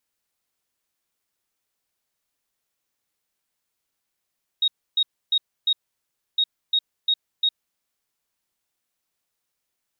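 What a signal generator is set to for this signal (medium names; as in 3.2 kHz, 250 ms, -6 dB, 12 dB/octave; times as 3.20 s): beep pattern sine 3.76 kHz, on 0.06 s, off 0.29 s, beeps 4, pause 0.65 s, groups 2, -16.5 dBFS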